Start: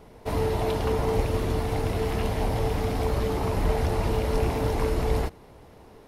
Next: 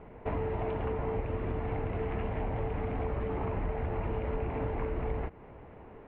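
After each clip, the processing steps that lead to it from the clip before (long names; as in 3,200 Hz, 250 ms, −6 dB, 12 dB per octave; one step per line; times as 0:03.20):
Butterworth low-pass 2,600 Hz 36 dB per octave
downward compressor 5 to 1, threshold −30 dBFS, peak gain reduction 11 dB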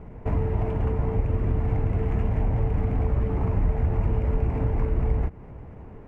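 running median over 9 samples
bass and treble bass +11 dB, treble −3 dB
level +1 dB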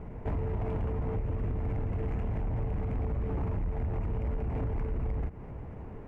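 downward compressor, threshold −24 dBFS, peak gain reduction 7.5 dB
soft clipping −26 dBFS, distortion −13 dB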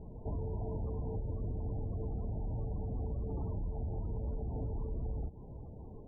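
spectral peaks only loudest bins 32
level −5.5 dB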